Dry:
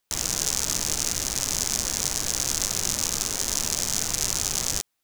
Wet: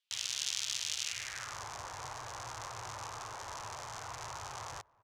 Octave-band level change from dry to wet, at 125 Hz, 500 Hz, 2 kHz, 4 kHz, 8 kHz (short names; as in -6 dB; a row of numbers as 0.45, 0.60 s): -14.0, -12.5, -8.0, -11.0, -18.0 dB